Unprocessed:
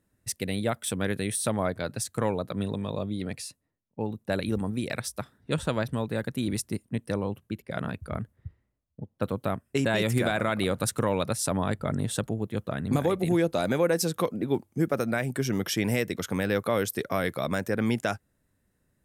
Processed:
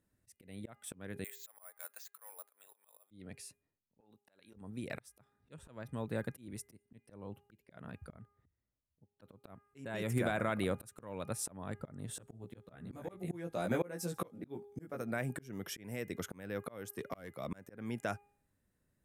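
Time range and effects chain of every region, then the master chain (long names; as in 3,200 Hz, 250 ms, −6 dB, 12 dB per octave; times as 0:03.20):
0:01.24–0:03.11: Bessel high-pass filter 1,100 Hz, order 4 + high-shelf EQ 4,000 Hz −11.5 dB + bad sample-rate conversion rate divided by 4×, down filtered, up zero stuff
0:04.00–0:04.54: high-pass filter 660 Hz 6 dB per octave + downward compressor 12 to 1, threshold −40 dBFS
0:12.07–0:15.02: double-tracking delay 17 ms −3 dB + delay with a high-pass on its return 68 ms, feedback 47%, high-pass 4,100 Hz, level −23 dB
0:16.94–0:17.49: gain into a clipping stage and back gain 19.5 dB + multiband upward and downward expander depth 40%
whole clip: hum removal 407.9 Hz, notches 7; dynamic equaliser 4,200 Hz, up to −7 dB, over −50 dBFS, Q 1.4; volume swells 454 ms; level −7 dB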